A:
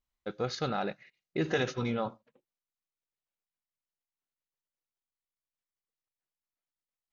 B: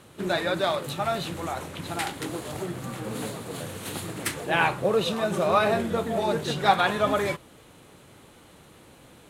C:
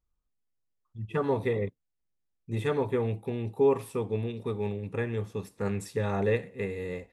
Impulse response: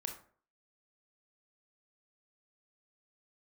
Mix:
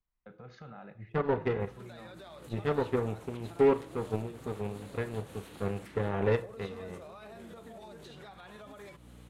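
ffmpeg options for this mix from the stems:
-filter_complex "[0:a]bass=f=250:g=5,treble=f=4k:g=-14,acompressor=threshold=-38dB:ratio=2.5,volume=-4dB,asplit=2[a][b];[b]volume=-10dB[c];[1:a]acompressor=threshold=-25dB:ratio=6,aeval=exprs='val(0)+0.00891*(sin(2*PI*60*n/s)+sin(2*PI*2*60*n/s)/2+sin(2*PI*3*60*n/s)/3+sin(2*PI*4*60*n/s)/4+sin(2*PI*5*60*n/s)/5)':c=same,adelay=1600,volume=-7.5dB[d];[2:a]aeval=exprs='0.2*(cos(1*acos(clip(val(0)/0.2,-1,1)))-cos(1*PI/2))+0.00708*(cos(3*acos(clip(val(0)/0.2,-1,1)))-cos(3*PI/2))+0.02*(cos(7*acos(clip(val(0)/0.2,-1,1)))-cos(7*PI/2))':c=same,lowpass=f=1.5k:p=1,volume=-2.5dB,asplit=2[e][f];[f]volume=-4dB[g];[a][d]amix=inputs=2:normalize=0,acrossover=split=100|270|4000[h][i][j][k];[h]acompressor=threshold=-56dB:ratio=4[l];[i]acompressor=threshold=-45dB:ratio=4[m];[j]acompressor=threshold=-37dB:ratio=4[n];[k]acompressor=threshold=-53dB:ratio=4[o];[l][m][n][o]amix=inputs=4:normalize=0,alimiter=level_in=16dB:limit=-24dB:level=0:latency=1:release=197,volume=-16dB,volume=0dB[p];[3:a]atrim=start_sample=2205[q];[c][g]amix=inputs=2:normalize=0[r];[r][q]afir=irnorm=-1:irlink=0[s];[e][p][s]amix=inputs=3:normalize=0"

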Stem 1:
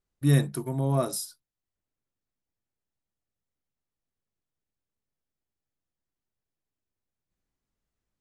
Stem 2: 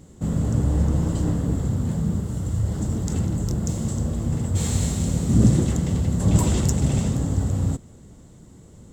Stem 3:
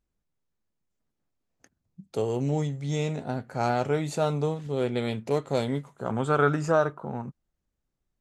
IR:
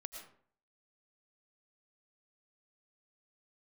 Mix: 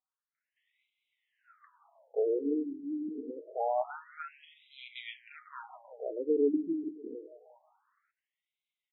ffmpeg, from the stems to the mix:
-filter_complex "[0:a]lowpass=f=1.1k:w=0.5412,lowpass=f=1.1k:w=1.3066,alimiter=limit=-20dB:level=0:latency=1:release=70,adelay=450,volume=-0.5dB,asplit=2[a][b];[b]volume=-17dB[c];[1:a]bass=f=250:g=3,treble=f=4k:g=-10,acompressor=threshold=-21dB:ratio=6,adelay=350,volume=-19dB[d];[2:a]aecho=1:1:6.4:0.36,volume=-3.5dB,asplit=3[e][f][g];[f]volume=-15.5dB[h];[g]apad=whole_len=408945[i];[d][i]sidechaincompress=threshold=-51dB:ratio=8:attack=16:release=513[j];[c][h]amix=inputs=2:normalize=0,aecho=0:1:182|364|546|728|910|1092:1|0.43|0.185|0.0795|0.0342|0.0147[k];[a][j][e][k]amix=inputs=4:normalize=0,lowshelf=f=200:g=10.5,afftfilt=real='re*between(b*sr/1024,280*pow(2900/280,0.5+0.5*sin(2*PI*0.26*pts/sr))/1.41,280*pow(2900/280,0.5+0.5*sin(2*PI*0.26*pts/sr))*1.41)':imag='im*between(b*sr/1024,280*pow(2900/280,0.5+0.5*sin(2*PI*0.26*pts/sr))/1.41,280*pow(2900/280,0.5+0.5*sin(2*PI*0.26*pts/sr))*1.41)':win_size=1024:overlap=0.75"

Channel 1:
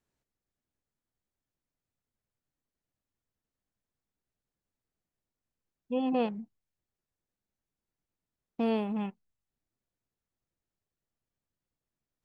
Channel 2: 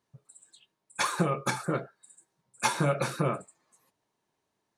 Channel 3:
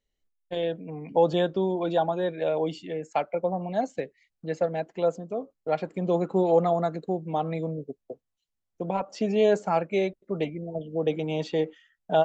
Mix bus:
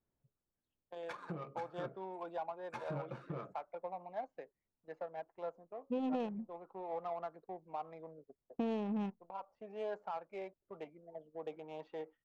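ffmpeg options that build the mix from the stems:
-filter_complex "[0:a]acompressor=threshold=-31dB:ratio=12,volume=-1.5dB,asplit=2[a][b];[1:a]acrossover=split=630[c][d];[c]aeval=exprs='val(0)*(1-0.5/2+0.5/2*cos(2*PI*5.6*n/s))':c=same[e];[d]aeval=exprs='val(0)*(1-0.5/2-0.5/2*cos(2*PI*5.6*n/s))':c=same[f];[e][f]amix=inputs=2:normalize=0,adelay=100,volume=-11dB[g];[2:a]highpass=f=730:p=1,equalizer=f=1k:w=1.1:g=11,adelay=400,volume=-15.5dB[h];[b]apad=whole_len=557624[i];[h][i]sidechaincompress=threshold=-43dB:ratio=4:attack=6.3:release=1200[j];[g][j]amix=inputs=2:normalize=0,agate=range=-10dB:threshold=-57dB:ratio=16:detection=peak,alimiter=level_in=7dB:limit=-24dB:level=0:latency=1:release=234,volume=-7dB,volume=0dB[k];[a][k]amix=inputs=2:normalize=0,adynamicsmooth=sensitivity=7.5:basefreq=1.4k"

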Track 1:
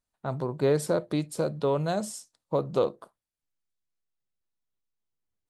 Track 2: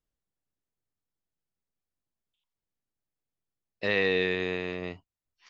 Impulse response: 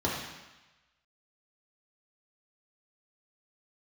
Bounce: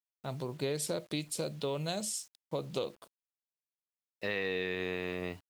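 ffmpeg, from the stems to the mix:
-filter_complex "[0:a]highshelf=f=1.9k:t=q:w=1.5:g=9.5,volume=-6.5dB,asplit=2[a][b];[1:a]adelay=400,volume=-0.5dB[c];[b]apad=whole_len=259973[d];[c][d]sidechaincompress=threshold=-49dB:ratio=8:attack=5.1:release=1070[e];[a][e]amix=inputs=2:normalize=0,acrusher=bits=9:mix=0:aa=0.000001,acompressor=threshold=-30dB:ratio=6"

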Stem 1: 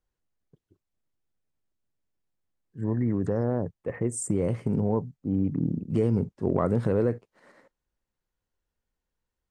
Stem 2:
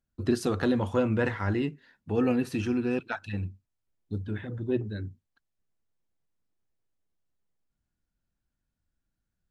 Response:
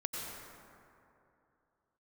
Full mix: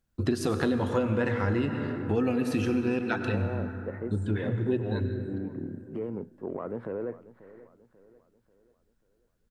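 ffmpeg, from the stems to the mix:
-filter_complex "[0:a]acrossover=split=240 2600:gain=0.178 1 0.0708[a][b][c];[a][b][c]amix=inputs=3:normalize=0,alimiter=limit=-20.5dB:level=0:latency=1,aeval=exprs='0.0944*(cos(1*acos(clip(val(0)/0.0944,-1,1)))-cos(1*PI/2))+0.00376*(cos(3*acos(clip(val(0)/0.0944,-1,1)))-cos(3*PI/2))':c=same,volume=-4dB,asplit=2[d][e];[e]volume=-17.5dB[f];[1:a]volume=2.5dB,asplit=2[g][h];[h]volume=-4.5dB[i];[2:a]atrim=start_sample=2205[j];[i][j]afir=irnorm=-1:irlink=0[k];[f]aecho=0:1:539|1078|1617|2156|2695|3234:1|0.42|0.176|0.0741|0.0311|0.0131[l];[d][g][k][l]amix=inputs=4:normalize=0,acompressor=threshold=-24dB:ratio=4"

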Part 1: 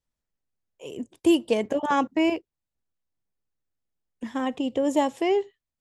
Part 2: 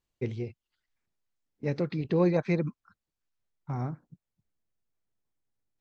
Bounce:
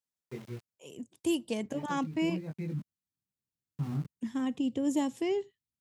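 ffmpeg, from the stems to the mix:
-filter_complex "[0:a]bass=f=250:g=-2,treble=f=4k:g=7,volume=-9.5dB,asplit=2[a][b];[1:a]flanger=delay=19.5:depth=6.4:speed=0.81,aeval=exprs='val(0)*gte(abs(val(0)),0.00841)':c=same,adelay=100,volume=-5.5dB[c];[b]apad=whole_len=260584[d];[c][d]sidechaincompress=threshold=-37dB:ratio=8:attack=20:release=1240[e];[a][e]amix=inputs=2:normalize=0,highpass=140,asubboost=boost=10.5:cutoff=190"

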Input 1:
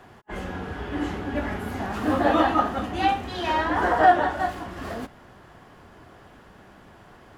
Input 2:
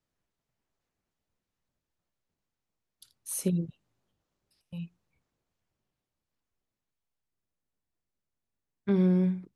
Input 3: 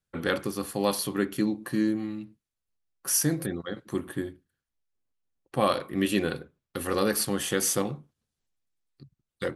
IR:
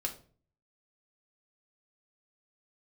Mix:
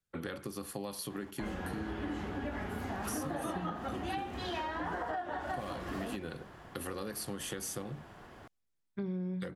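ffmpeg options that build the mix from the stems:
-filter_complex "[0:a]acompressor=threshold=-24dB:ratio=6,adelay=1100,volume=-3dB[a];[1:a]highshelf=f=5.6k:g=-8.5,adelay=100,volume=-5dB[b];[2:a]acrossover=split=130[c][d];[d]acompressor=threshold=-30dB:ratio=6[e];[c][e]amix=inputs=2:normalize=0,volume=-4dB[f];[a][b][f]amix=inputs=3:normalize=0,acompressor=threshold=-36dB:ratio=3"

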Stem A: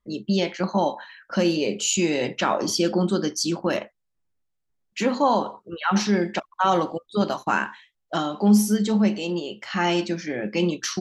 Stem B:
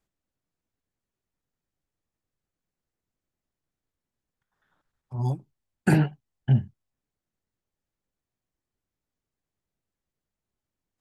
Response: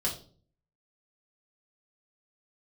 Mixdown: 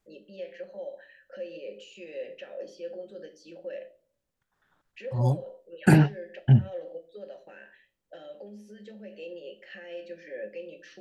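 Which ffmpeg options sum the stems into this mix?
-filter_complex "[0:a]acompressor=threshold=-22dB:ratio=6,alimiter=limit=-21dB:level=0:latency=1:release=102,asplit=3[a][b][c];[a]bandpass=f=530:t=q:w=8,volume=0dB[d];[b]bandpass=f=1.84k:t=q:w=8,volume=-6dB[e];[c]bandpass=f=2.48k:t=q:w=8,volume=-9dB[f];[d][e][f]amix=inputs=3:normalize=0,volume=-4dB,asplit=2[g][h];[h]volume=-9.5dB[i];[1:a]volume=2.5dB[j];[2:a]atrim=start_sample=2205[k];[i][k]afir=irnorm=-1:irlink=0[l];[g][j][l]amix=inputs=3:normalize=0"

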